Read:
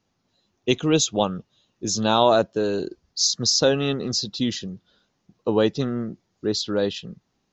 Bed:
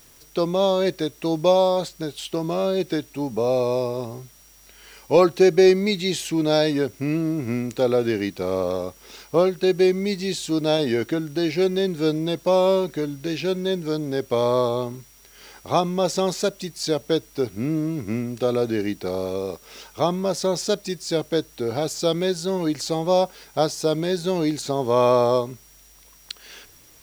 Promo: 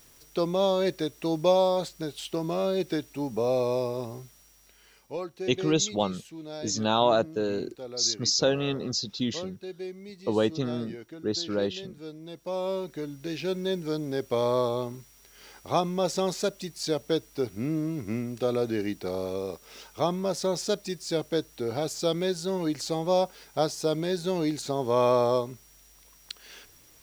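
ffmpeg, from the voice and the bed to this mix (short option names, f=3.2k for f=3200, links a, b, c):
-filter_complex "[0:a]adelay=4800,volume=-5dB[a];[1:a]volume=10dB,afade=t=out:st=4.2:d=0.99:silence=0.177828,afade=t=in:st=12.19:d=1.48:silence=0.188365[b];[a][b]amix=inputs=2:normalize=0"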